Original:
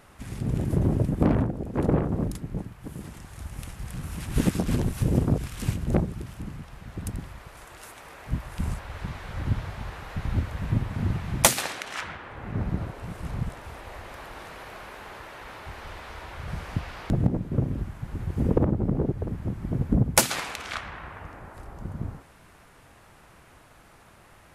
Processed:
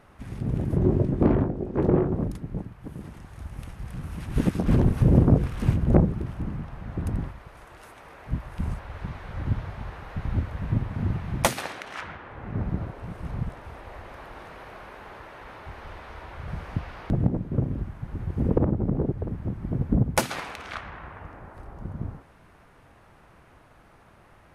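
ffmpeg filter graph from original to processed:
-filter_complex "[0:a]asettb=1/sr,asplit=3[a][b][c];[a]atrim=end=0.784[d];[b]atrim=start=0.78:end=2.13,asetpts=PTS-STARTPTS,afade=t=in:d=0.004:c=qsin,afade=t=out:st=1.346:d=0.004:c=qsin,lowpass=8.1k,equalizer=f=370:w=6.9:g=9,asplit=2[e][f];[f]adelay=22,volume=-7.5dB[g];[e][g]amix=inputs=2:normalize=0,atrim=end_sample=59535[h];[c]atrim=start=2.126[i];[d][h]acrossfade=d=0.004:c1=hsin:c2=qsin[j];[j][i]acrossfade=d=0.004:c1=qsin:c2=hsin,asettb=1/sr,asplit=3[k][l][m];[k]atrim=end=4.644[n];[l]atrim=start=4.64:end=7.31,asetpts=PTS-STARTPTS,afade=t=in:d=0.004:c=qsin,afade=t=out:st=2.666:d=0.004:c=qsin,highshelf=f=2.1k:g=-7.5,bandreject=f=50:t=h:w=6,bandreject=f=100:t=h:w=6,bandreject=f=150:t=h:w=6,bandreject=f=200:t=h:w=6,bandreject=f=250:t=h:w=6,bandreject=f=300:t=h:w=6,bandreject=f=350:t=h:w=6,bandreject=f=400:t=h:w=6,bandreject=f=450:t=h:w=6,bandreject=f=500:t=h:w=6,acontrast=74[o];[m]atrim=start=7.306[p];[n][o]acrossfade=d=0.004:c1=hsin:c2=qsin[q];[q][p]acrossfade=d=0.004:c1=qsin:c2=hsin,highshelf=f=3.2k:g=-11,bandreject=f=7.4k:w=15"

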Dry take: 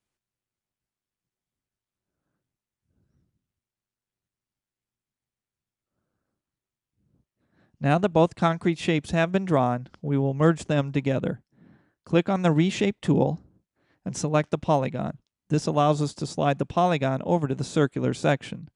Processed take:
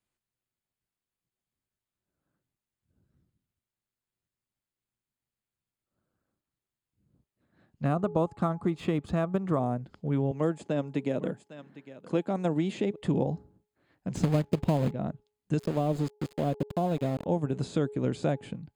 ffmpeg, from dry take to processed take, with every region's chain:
-filter_complex "[0:a]asettb=1/sr,asplit=3[a][b][c];[a]atrim=end=7.854[d];[b]atrim=start=7.85:end=9.59,asetpts=PTS-STARTPTS,afade=t=in:d=0.004:c=qsin,afade=t=out:st=1.736:d=0.004:c=qsin,adynamicsmooth=sensitivity=7:basefreq=5.9k,equalizer=f=1.2k:w=3.4:g=14[e];[c]atrim=start=9.586[f];[d][e]acrossfade=d=0.004:c1=hsin:c2=qsin[g];[g][f]acrossfade=d=0.004:c1=qsin:c2=hsin,asettb=1/sr,asplit=3[h][i][j];[h]atrim=end=10.314[k];[i]atrim=start=10.31:end=12.96,asetpts=PTS-STARTPTS,afade=t=in:d=0.004:c=qsin,afade=t=out:st=2.646:d=0.004:c=qsin,highpass=200,aecho=1:1:805:0.112,atrim=end_sample=116865[l];[j]atrim=start=12.956[m];[k][l]acrossfade=d=0.004:c1=hsin:c2=qsin[n];[n][m]acrossfade=d=0.004:c1=qsin:c2=hsin,asettb=1/sr,asplit=3[o][p][q];[o]atrim=end=14.154[r];[p]atrim=start=14.15:end=14.91,asetpts=PTS-STARTPTS,afade=t=in:d=0.004:c=qsin,afade=t=out:st=0.756:d=0.004:c=qsin,lowshelf=f=490:g=11.5,acrusher=bits=2:mode=log:mix=0:aa=0.000001[s];[q]atrim=start=14.906[t];[r][s]acrossfade=d=0.004:c1=hsin:c2=qsin[u];[u][t]acrossfade=d=0.004:c1=qsin:c2=hsin,asettb=1/sr,asplit=3[v][w][x];[v]atrim=end=15.594[y];[w]atrim=start=15.59:end=17.26,asetpts=PTS-STARTPTS,afade=t=in:d=0.004:c=qsin,afade=t=out:st=1.666:d=0.004:c=qsin,equalizer=f=1.7k:t=o:w=1.3:g=-13,aeval=exprs='val(0)*gte(abs(val(0)),0.0316)':c=same[z];[x]atrim=start=17.256[aa];[y][z]acrossfade=d=0.004:c1=hsin:c2=qsin[ab];[ab][aa]acrossfade=d=0.004:c1=qsin:c2=hsin,bandreject=f=5.7k:w=5.6,bandreject=f=420.2:t=h:w=4,bandreject=f=840.4:t=h:w=4,acrossover=split=780|7100[ac][ad][ae];[ac]acompressor=threshold=-21dB:ratio=4[af];[ad]acompressor=threshold=-42dB:ratio=4[ag];[ae]acompressor=threshold=-59dB:ratio=4[ah];[af][ag][ah]amix=inputs=3:normalize=0,volume=-2dB"

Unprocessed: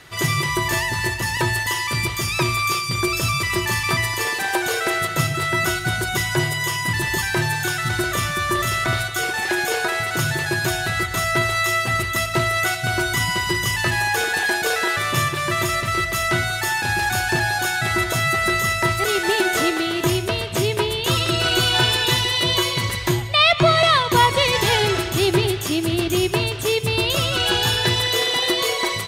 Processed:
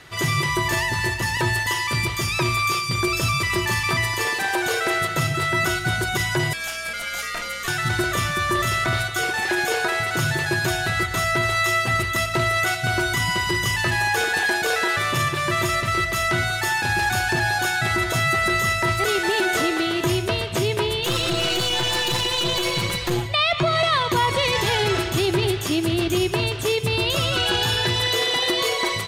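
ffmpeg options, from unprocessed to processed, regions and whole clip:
-filter_complex "[0:a]asettb=1/sr,asplit=3[a][b][c];[a]atrim=end=6.534[d];[b]atrim=start=6.53:end=7.68,asetpts=PTS-STARTPTS,afade=t=in:d=0.004:c=qsin,afade=t=out:st=1.146:d=0.004:c=qsin,highpass=f=1.3k:p=1,aeval=exprs='val(0)*sin(2*PI*340*n/s)':c=same,aeval=exprs='val(0)+0.00316*(sin(2*PI*60*n/s)+sin(2*PI*2*60*n/s)/2+sin(2*PI*3*60*n/s)/3+sin(2*PI*4*60*n/s)/4+sin(2*PI*5*60*n/s)/5)':c=same[e];[c]atrim=start=7.676[f];[d][e]acrossfade=d=0.004:c1=hsin:c2=qsin[g];[g][f]acrossfade=d=0.004:c1=qsin:c2=hsin,asettb=1/sr,asplit=3[h][i][j];[h]atrim=end=21.024[k];[i]atrim=start=21.02:end=23.26,asetpts=PTS-STARTPTS,afade=t=in:d=0.004:c=qsin,afade=t=out:st=2.236:d=0.004:c=qsin,aecho=1:1:5.8:0.9,atrim=end_sample=98784,aeval=exprs='clip(val(0),-1,0.0794)':c=same[l];[j]atrim=start=23.256[m];[k][l]acrossfade=d=0.004:c1=hsin:c2=qsin[n];[n][m]acrossfade=d=0.004:c1=qsin:c2=hsin,highshelf=f=8.3k:g=-5,alimiter=limit=-12dB:level=0:latency=1:release=22"

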